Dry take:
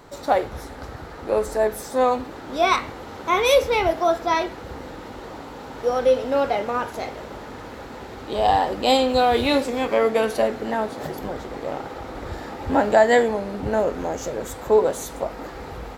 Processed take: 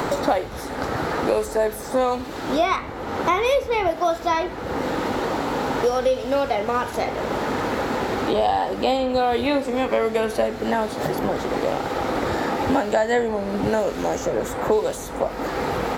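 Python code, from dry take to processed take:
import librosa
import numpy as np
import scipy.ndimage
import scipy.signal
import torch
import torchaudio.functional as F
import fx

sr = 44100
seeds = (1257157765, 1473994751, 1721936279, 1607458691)

y = fx.band_squash(x, sr, depth_pct=100)
y = y * 10.0 ** (-1.0 / 20.0)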